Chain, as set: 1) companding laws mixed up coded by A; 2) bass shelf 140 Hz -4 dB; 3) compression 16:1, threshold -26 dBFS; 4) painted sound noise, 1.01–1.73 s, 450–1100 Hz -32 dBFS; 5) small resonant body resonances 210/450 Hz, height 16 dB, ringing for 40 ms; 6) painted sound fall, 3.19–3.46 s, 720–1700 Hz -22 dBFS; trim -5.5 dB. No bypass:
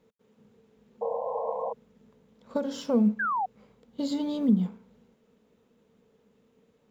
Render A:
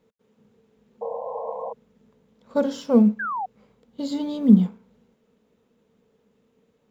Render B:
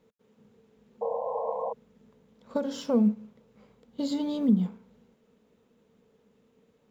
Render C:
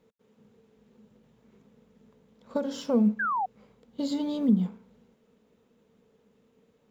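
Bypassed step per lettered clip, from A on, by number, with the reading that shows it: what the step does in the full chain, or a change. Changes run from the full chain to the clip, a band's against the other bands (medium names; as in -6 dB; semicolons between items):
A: 3, mean gain reduction 3.0 dB; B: 6, 1 kHz band -5.0 dB; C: 4, 500 Hz band -3.0 dB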